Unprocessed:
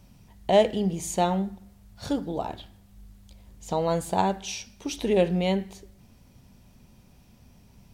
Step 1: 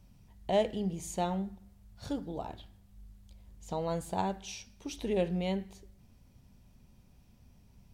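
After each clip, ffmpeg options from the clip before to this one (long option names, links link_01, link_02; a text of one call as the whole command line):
ffmpeg -i in.wav -af "lowshelf=frequency=110:gain=7,volume=-9dB" out.wav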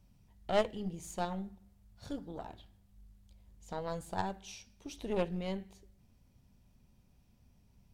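ffmpeg -i in.wav -af "aeval=exprs='0.141*(cos(1*acos(clip(val(0)/0.141,-1,1)))-cos(1*PI/2))+0.0224*(cos(3*acos(clip(val(0)/0.141,-1,1)))-cos(3*PI/2))+0.0141*(cos(4*acos(clip(val(0)/0.141,-1,1)))-cos(4*PI/2))':channel_layout=same" out.wav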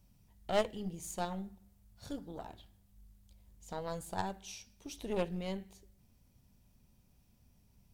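ffmpeg -i in.wav -af "crystalizer=i=1:c=0,volume=-1.5dB" out.wav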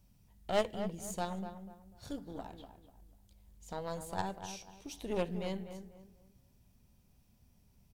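ffmpeg -i in.wav -filter_complex "[0:a]asplit=2[link_01][link_02];[link_02]adelay=246,lowpass=frequency=1700:poles=1,volume=-9dB,asplit=2[link_03][link_04];[link_04]adelay=246,lowpass=frequency=1700:poles=1,volume=0.32,asplit=2[link_05][link_06];[link_06]adelay=246,lowpass=frequency=1700:poles=1,volume=0.32,asplit=2[link_07][link_08];[link_08]adelay=246,lowpass=frequency=1700:poles=1,volume=0.32[link_09];[link_01][link_03][link_05][link_07][link_09]amix=inputs=5:normalize=0" out.wav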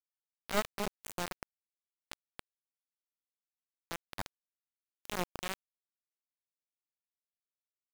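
ffmpeg -i in.wav -af "acrusher=bits=3:dc=4:mix=0:aa=0.000001,volume=5dB" out.wav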